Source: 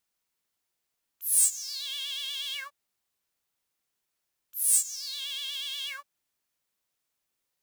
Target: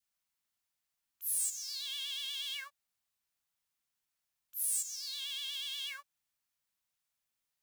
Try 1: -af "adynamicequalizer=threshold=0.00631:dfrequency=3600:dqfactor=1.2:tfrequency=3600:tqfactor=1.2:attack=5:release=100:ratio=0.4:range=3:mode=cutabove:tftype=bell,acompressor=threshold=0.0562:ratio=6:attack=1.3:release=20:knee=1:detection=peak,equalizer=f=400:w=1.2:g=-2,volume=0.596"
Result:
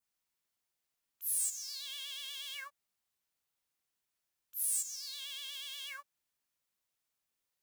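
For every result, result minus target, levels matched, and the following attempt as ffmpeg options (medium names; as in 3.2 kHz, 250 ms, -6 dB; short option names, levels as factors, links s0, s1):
500 Hz band +5.5 dB; 4 kHz band -3.0 dB
-af "adynamicequalizer=threshold=0.00631:dfrequency=3600:dqfactor=1.2:tfrequency=3600:tqfactor=1.2:attack=5:release=100:ratio=0.4:range=3:mode=cutabove:tftype=bell,acompressor=threshold=0.0562:ratio=6:attack=1.3:release=20:knee=1:detection=peak,equalizer=f=400:w=1.2:g=-8.5,volume=0.596"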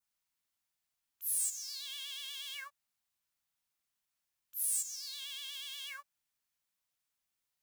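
4 kHz band -3.0 dB
-af "adynamicequalizer=threshold=0.00631:dfrequency=1100:dqfactor=1.2:tfrequency=1100:tqfactor=1.2:attack=5:release=100:ratio=0.4:range=3:mode=cutabove:tftype=bell,acompressor=threshold=0.0562:ratio=6:attack=1.3:release=20:knee=1:detection=peak,equalizer=f=400:w=1.2:g=-8.5,volume=0.596"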